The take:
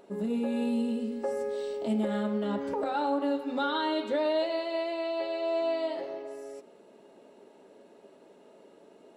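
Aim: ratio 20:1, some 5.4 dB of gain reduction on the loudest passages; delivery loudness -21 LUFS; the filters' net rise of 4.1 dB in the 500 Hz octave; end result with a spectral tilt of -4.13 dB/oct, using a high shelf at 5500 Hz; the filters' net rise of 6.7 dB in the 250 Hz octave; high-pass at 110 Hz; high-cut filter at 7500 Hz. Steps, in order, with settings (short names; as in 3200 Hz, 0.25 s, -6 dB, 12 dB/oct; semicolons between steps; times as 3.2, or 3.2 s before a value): HPF 110 Hz; LPF 7500 Hz; bell 250 Hz +7 dB; bell 500 Hz +4 dB; high shelf 5500 Hz -6 dB; compressor 20:1, threshold -24 dBFS; gain +8 dB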